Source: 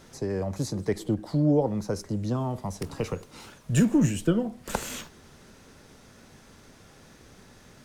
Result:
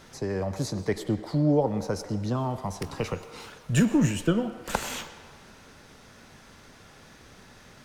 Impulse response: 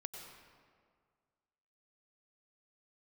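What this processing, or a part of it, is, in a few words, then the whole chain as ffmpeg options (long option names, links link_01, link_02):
filtered reverb send: -filter_complex "[0:a]asplit=2[link_01][link_02];[link_02]highpass=590,lowpass=5800[link_03];[1:a]atrim=start_sample=2205[link_04];[link_03][link_04]afir=irnorm=-1:irlink=0,volume=-1dB[link_05];[link_01][link_05]amix=inputs=2:normalize=0"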